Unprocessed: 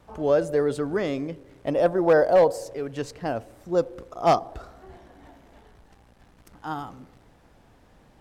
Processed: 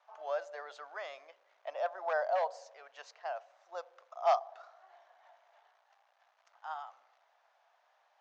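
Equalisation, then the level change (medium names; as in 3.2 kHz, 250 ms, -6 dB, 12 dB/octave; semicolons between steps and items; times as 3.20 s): Chebyshev band-pass 650–6600 Hz, order 4; treble shelf 3.4 kHz -7 dB; -7.0 dB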